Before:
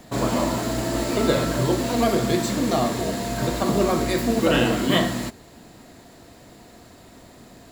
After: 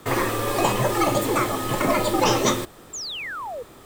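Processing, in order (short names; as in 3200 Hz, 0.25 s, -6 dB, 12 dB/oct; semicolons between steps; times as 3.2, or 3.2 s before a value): speed mistake 7.5 ips tape played at 15 ips; frequency shift -130 Hz; painted sound fall, 2.93–3.63, 450–7600 Hz -32 dBFS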